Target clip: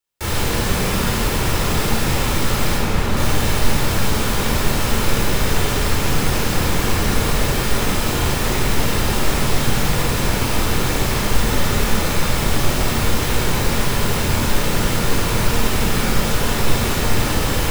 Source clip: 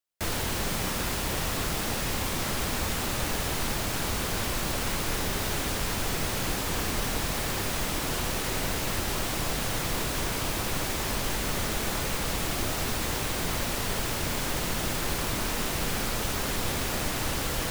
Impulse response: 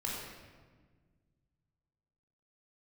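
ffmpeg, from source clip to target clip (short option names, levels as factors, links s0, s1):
-filter_complex "[0:a]asettb=1/sr,asplit=3[s0][s1][s2];[s0]atrim=end=2.774[s3];[s1]atrim=start=2.77:end=3.17,asetpts=PTS-STARTPTS,afade=t=in:d=0.004:c=qsin,afade=t=out:st=0.396:d=0.004:c=qsin,highshelf=f=4000:g=-9[s4];[s2]atrim=start=3.166[s5];[s3][s4]acrossfade=d=0.004:c1=hsin:c2=qsin[s6];[s6][s5]acrossfade=d=0.004:c1=qsin:c2=hsin[s7];[1:a]atrim=start_sample=2205[s8];[s7][s8]afir=irnorm=-1:irlink=0,volume=2"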